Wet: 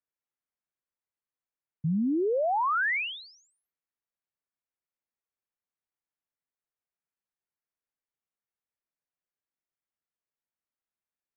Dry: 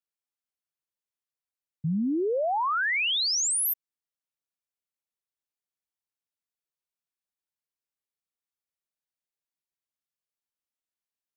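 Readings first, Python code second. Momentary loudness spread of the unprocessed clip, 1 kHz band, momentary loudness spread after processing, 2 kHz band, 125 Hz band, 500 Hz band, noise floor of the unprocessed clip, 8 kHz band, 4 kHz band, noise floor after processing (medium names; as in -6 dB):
8 LU, 0.0 dB, 10 LU, -1.5 dB, 0.0 dB, 0.0 dB, under -85 dBFS, under -35 dB, -14.0 dB, under -85 dBFS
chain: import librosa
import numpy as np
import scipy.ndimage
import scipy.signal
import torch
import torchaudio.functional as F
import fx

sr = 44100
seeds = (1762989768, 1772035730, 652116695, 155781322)

y = scipy.signal.sosfilt(scipy.signal.butter(4, 2300.0, 'lowpass', fs=sr, output='sos'), x)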